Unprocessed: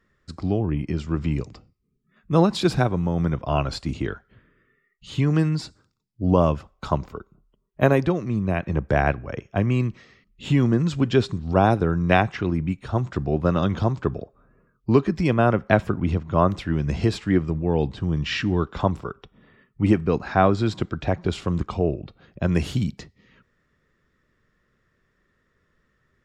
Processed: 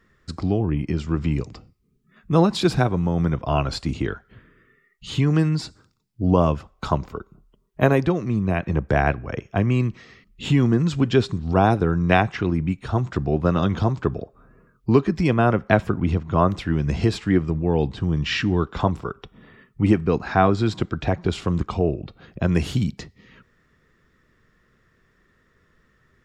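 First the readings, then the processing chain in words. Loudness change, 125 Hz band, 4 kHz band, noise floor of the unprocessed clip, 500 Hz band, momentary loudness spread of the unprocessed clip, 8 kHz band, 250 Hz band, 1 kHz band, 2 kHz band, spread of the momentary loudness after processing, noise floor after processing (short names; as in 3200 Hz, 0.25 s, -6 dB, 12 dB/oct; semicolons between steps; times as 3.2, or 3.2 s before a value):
+1.0 dB, +1.5 dB, +2.0 dB, -70 dBFS, +0.5 dB, 10 LU, n/a, +1.5 dB, +1.0 dB, +1.5 dB, 10 LU, -63 dBFS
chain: in parallel at +0.5 dB: compressor, threshold -35 dBFS, peak gain reduction 21.5 dB; on the sum: notch 570 Hz, Q 14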